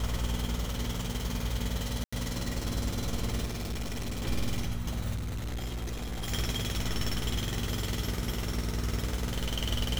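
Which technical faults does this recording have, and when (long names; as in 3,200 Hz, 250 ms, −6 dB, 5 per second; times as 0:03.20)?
mains hum 60 Hz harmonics 4 −36 dBFS
0:02.04–0:02.12: drop-out 85 ms
0:03.44–0:04.26: clipping −31 dBFS
0:05.15–0:06.32: clipping −31.5 dBFS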